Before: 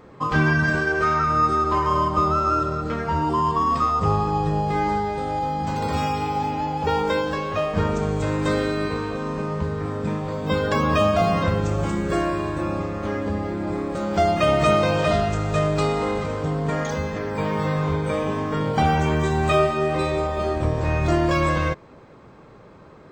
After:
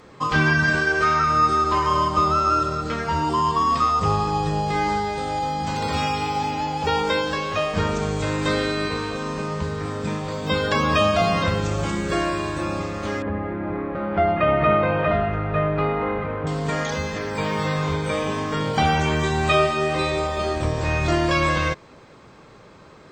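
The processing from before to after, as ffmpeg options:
-filter_complex "[0:a]asettb=1/sr,asplit=3[s0][s1][s2];[s0]atrim=end=13.224[s3];[s1]atrim=start=13.22:end=16.47,asetpts=PTS-STARTPTS,afade=t=in:d=0.004:c=qsin,afade=t=out:st=3.246:d=0.004:c=qsin,lowpass=f=2100:w=0.5412,lowpass=f=2100:w=1.3066[s4];[s2]atrim=start=16.466[s5];[s3][s4]acrossfade=d=0.004:c1=hsin:c2=qsin[s6];[s6][s5]acrossfade=d=0.004:c1=qsin:c2=hsin,acrossover=split=4700[s7][s8];[s8]acompressor=threshold=0.00316:ratio=4:attack=1:release=60[s9];[s7][s9]amix=inputs=2:normalize=0,equalizer=f=6200:w=0.33:g=11,volume=0.841"

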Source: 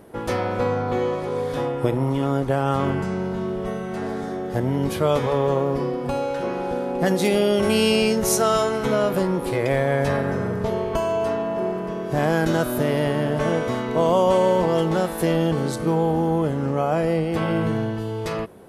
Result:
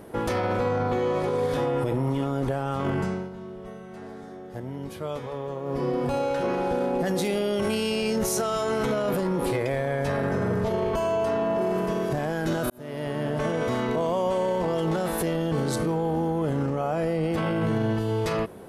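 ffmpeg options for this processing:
-filter_complex "[0:a]asettb=1/sr,asplit=3[s0][s1][s2];[s0]atrim=end=11.614[s3];[s1]atrim=start=11.61:end=12.09,asetpts=PTS-STARTPTS,afade=t=in:d=0.004:c=qsin,afade=t=out:st=0.476:d=0.004:c=qsin,aemphasis=mode=production:type=cd[s4];[s2]atrim=start=12.086[s5];[s3][s4]acrossfade=d=0.004:c1=hsin:c2=qsin[s6];[s6][s5]acrossfade=d=0.004:c1=qsin:c2=hsin,asplit=4[s7][s8][s9][s10];[s7]atrim=end=3.3,asetpts=PTS-STARTPTS,afade=t=out:st=2.87:d=0.43:silence=0.177828[s11];[s8]atrim=start=3.3:end=5.62,asetpts=PTS-STARTPTS,volume=0.178[s12];[s9]atrim=start=5.62:end=12.7,asetpts=PTS-STARTPTS,afade=t=in:d=0.43:silence=0.177828,afade=t=out:st=7.076:d=0.004:c=hsin[s13];[s10]atrim=start=12.7,asetpts=PTS-STARTPTS,afade=t=in:d=1.33[s14];[s11][s12][s13][s14]concat=n=4:v=0:a=1,acontrast=39,alimiter=limit=0.178:level=0:latency=1:release=21,volume=0.708"

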